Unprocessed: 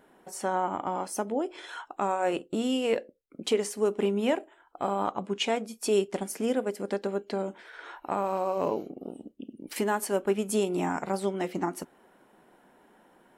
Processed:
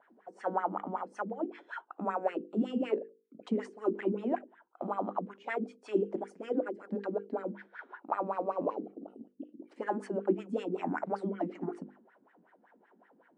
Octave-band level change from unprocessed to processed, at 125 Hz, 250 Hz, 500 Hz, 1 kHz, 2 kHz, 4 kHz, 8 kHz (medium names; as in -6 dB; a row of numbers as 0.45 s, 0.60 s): -5.0 dB, -3.5 dB, -6.0 dB, -5.0 dB, -6.0 dB, under -15 dB, under -25 dB